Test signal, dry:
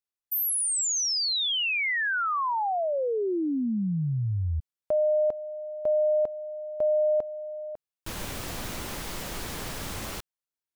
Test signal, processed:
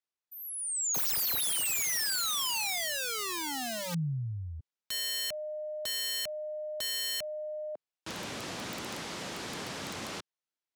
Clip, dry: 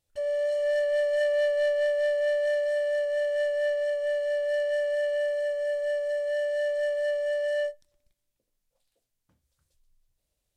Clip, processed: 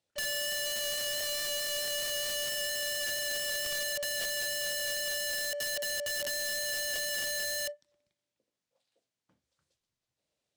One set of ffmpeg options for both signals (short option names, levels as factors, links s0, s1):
-filter_complex "[0:a]highpass=170,lowpass=6500,aeval=exprs='(mod(22.4*val(0)+1,2)-1)/22.4':c=same,acrossover=split=270|3200[s0][s1][s2];[s1]acompressor=threshold=0.0178:ratio=6:attack=0.11:release=71:knee=2.83:detection=peak[s3];[s0][s3][s2]amix=inputs=3:normalize=0"